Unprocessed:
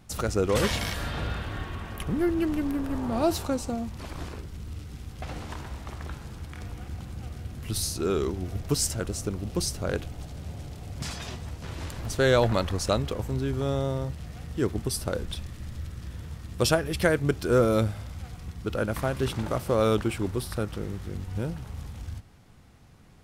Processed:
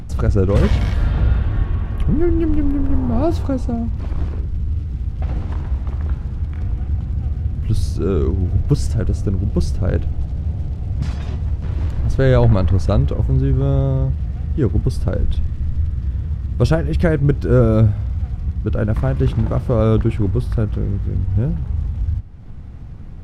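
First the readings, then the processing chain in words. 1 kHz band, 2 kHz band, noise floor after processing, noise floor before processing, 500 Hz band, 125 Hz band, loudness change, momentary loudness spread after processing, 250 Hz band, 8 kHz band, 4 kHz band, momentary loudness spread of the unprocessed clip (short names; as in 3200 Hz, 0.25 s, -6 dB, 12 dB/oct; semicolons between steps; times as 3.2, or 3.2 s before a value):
+2.0 dB, 0.0 dB, -29 dBFS, -45 dBFS, +5.0 dB, +14.5 dB, +9.5 dB, 9 LU, +8.5 dB, n/a, -4.5 dB, 15 LU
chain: RIAA curve playback; upward compressor, threshold -26 dBFS; gain +2 dB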